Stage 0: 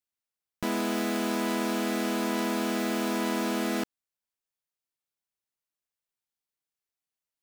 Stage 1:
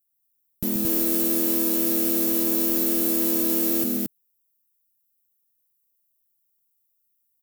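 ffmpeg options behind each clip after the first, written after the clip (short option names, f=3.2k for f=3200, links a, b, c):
-filter_complex "[0:a]firequalizer=gain_entry='entry(160,0);entry(880,-23);entry(3100,-13);entry(14000,14)':delay=0.05:min_phase=1,asplit=2[a][b];[b]aecho=0:1:131.2|224.5:0.447|0.891[c];[a][c]amix=inputs=2:normalize=0,volume=6.5dB"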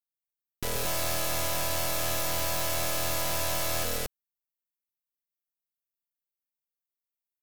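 -af "aeval=exprs='0.708*(cos(1*acos(clip(val(0)/0.708,-1,1)))-cos(1*PI/2))+0.282*(cos(6*acos(clip(val(0)/0.708,-1,1)))-cos(6*PI/2))+0.112*(cos(7*acos(clip(val(0)/0.708,-1,1)))-cos(7*PI/2))':c=same,asoftclip=type=tanh:threshold=-17dB,volume=-1.5dB"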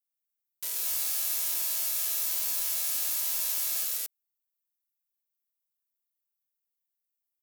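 -af "aderivative,volume=1dB"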